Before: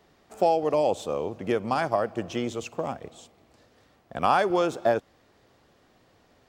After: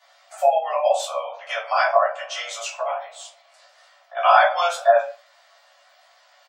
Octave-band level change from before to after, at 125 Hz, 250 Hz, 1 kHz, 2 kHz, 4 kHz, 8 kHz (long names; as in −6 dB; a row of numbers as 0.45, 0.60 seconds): below −40 dB, below −40 dB, +7.5 dB, +10.0 dB, +9.0 dB, +10.0 dB